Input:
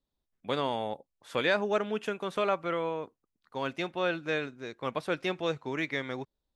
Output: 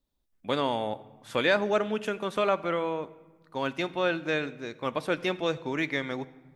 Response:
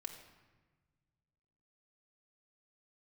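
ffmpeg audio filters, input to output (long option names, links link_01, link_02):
-filter_complex "[0:a]asplit=2[link_01][link_02];[1:a]atrim=start_sample=2205,lowshelf=frequency=230:gain=7.5,highshelf=frequency=6900:gain=9.5[link_03];[link_02][link_03]afir=irnorm=-1:irlink=0,volume=-5.5dB[link_04];[link_01][link_04]amix=inputs=2:normalize=0"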